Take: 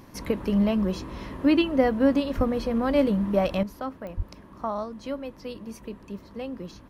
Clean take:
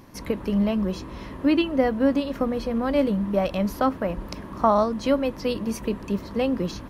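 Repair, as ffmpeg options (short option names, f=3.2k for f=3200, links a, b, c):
-filter_complex "[0:a]adeclick=t=4,asplit=3[a][b][c];[a]afade=t=out:st=2.36:d=0.02[d];[b]highpass=f=140:w=0.5412,highpass=f=140:w=1.3066,afade=t=in:st=2.36:d=0.02,afade=t=out:st=2.48:d=0.02[e];[c]afade=t=in:st=2.48:d=0.02[f];[d][e][f]amix=inputs=3:normalize=0,asplit=3[g][h][i];[g]afade=t=out:st=4.16:d=0.02[j];[h]highpass=f=140:w=0.5412,highpass=f=140:w=1.3066,afade=t=in:st=4.16:d=0.02,afade=t=out:st=4.28:d=0.02[k];[i]afade=t=in:st=4.28:d=0.02[l];[j][k][l]amix=inputs=3:normalize=0,asetnsamples=n=441:p=0,asendcmd='3.63 volume volume 11dB',volume=0dB"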